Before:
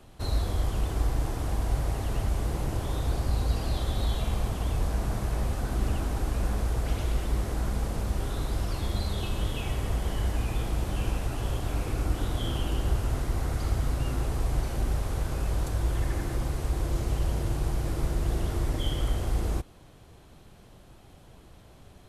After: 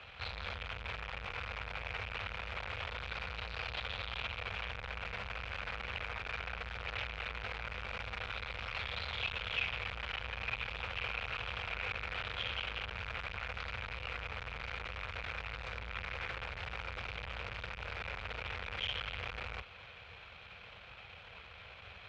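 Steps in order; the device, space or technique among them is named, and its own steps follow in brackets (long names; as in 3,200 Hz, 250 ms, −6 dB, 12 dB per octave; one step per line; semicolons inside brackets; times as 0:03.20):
scooped metal amplifier (tube saturation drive 41 dB, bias 0.55; loudspeaker in its box 100–3,500 Hz, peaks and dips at 140 Hz −9 dB, 490 Hz +8 dB, 1,400 Hz +5 dB, 2,400 Hz +10 dB; guitar amp tone stack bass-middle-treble 10-0-10)
level +14 dB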